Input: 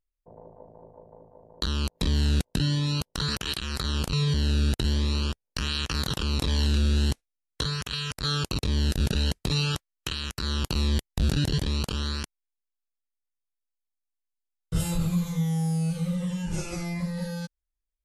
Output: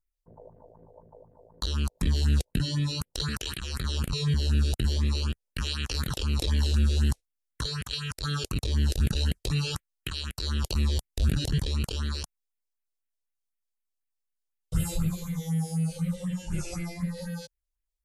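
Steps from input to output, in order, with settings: phaser stages 4, 4 Hz, lowest notch 170–1000 Hz

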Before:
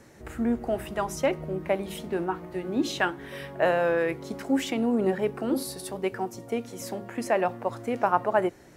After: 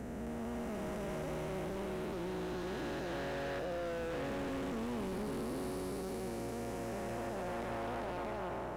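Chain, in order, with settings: time blur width 1.12 s; overloaded stage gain 34.5 dB; hum 60 Hz, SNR 13 dB; gain -2 dB

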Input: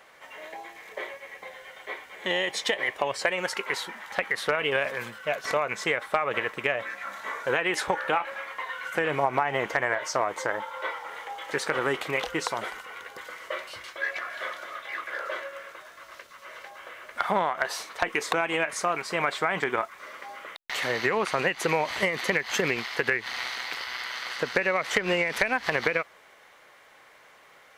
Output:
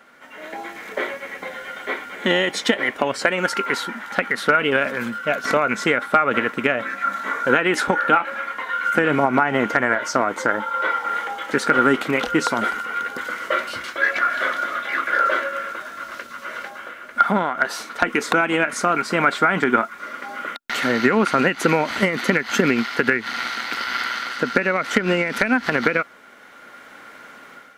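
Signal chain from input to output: small resonant body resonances 240/1400 Hz, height 16 dB, ringing for 40 ms; AGC gain up to 9.5 dB; gain -1 dB

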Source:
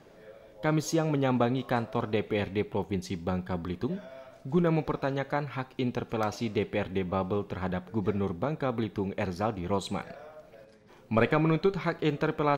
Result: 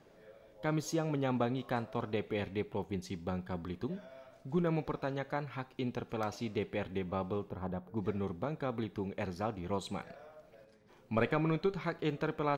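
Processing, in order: 7.49–7.97 band shelf 3800 Hz -11.5 dB 2.9 oct; gain -6.5 dB

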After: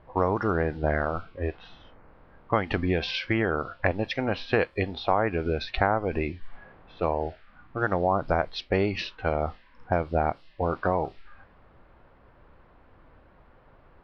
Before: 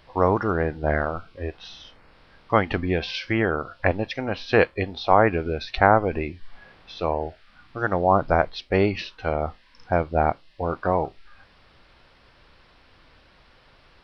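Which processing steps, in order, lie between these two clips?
low-pass opened by the level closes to 1100 Hz, open at -19 dBFS; compressor 3:1, threshold -23 dBFS, peak gain reduction 10 dB; gain +1.5 dB

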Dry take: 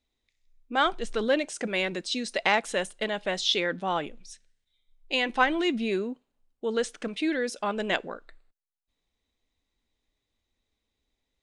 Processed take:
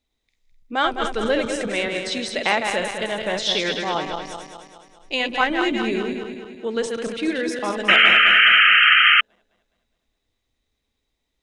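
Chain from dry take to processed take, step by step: regenerating reverse delay 0.104 s, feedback 71%, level -5 dB; painted sound noise, 7.88–9.21, 1200–3200 Hz -16 dBFS; gain +2.5 dB

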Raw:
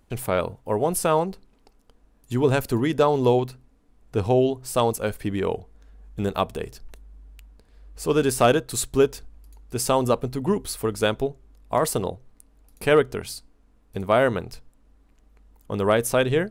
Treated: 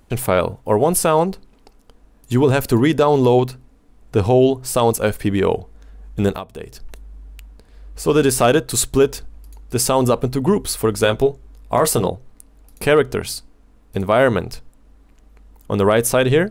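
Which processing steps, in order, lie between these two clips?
6.31–8.06 compressor 8:1, threshold -35 dBFS, peak gain reduction 17.5 dB; 11.01–12.08 doubler 17 ms -7.5 dB; maximiser +12 dB; gain -4 dB

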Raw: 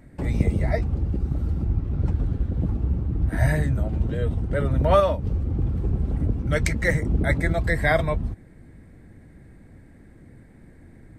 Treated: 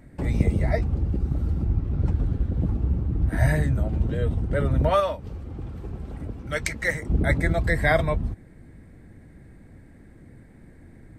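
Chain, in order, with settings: 4.89–7.1 low shelf 430 Hz -11.5 dB

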